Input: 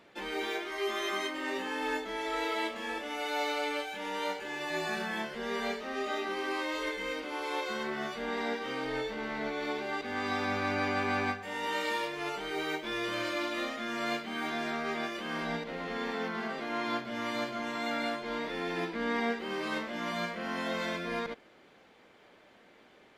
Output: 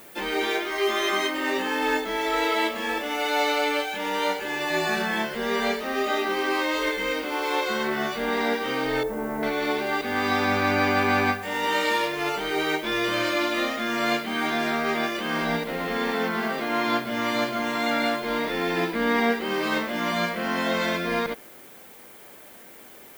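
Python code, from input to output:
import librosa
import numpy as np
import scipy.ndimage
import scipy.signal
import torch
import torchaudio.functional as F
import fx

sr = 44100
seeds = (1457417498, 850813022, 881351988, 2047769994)

y = fx.lowpass(x, sr, hz=1000.0, slope=12, at=(9.03, 9.43))
y = fx.dmg_noise_colour(y, sr, seeds[0], colour='violet', level_db=-58.0)
y = F.gain(torch.from_numpy(y), 9.0).numpy()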